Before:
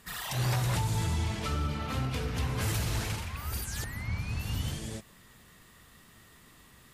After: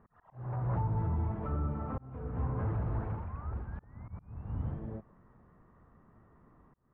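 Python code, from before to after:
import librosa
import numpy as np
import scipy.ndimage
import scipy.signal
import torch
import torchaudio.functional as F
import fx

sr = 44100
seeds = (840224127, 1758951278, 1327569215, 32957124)

y = fx.auto_swell(x, sr, attack_ms=124.0)
y = scipy.signal.sosfilt(scipy.signal.butter(4, 1200.0, 'lowpass', fs=sr, output='sos'), y)
y = fx.auto_swell(y, sr, attack_ms=439.0)
y = F.gain(torch.from_numpy(y), -1.5).numpy()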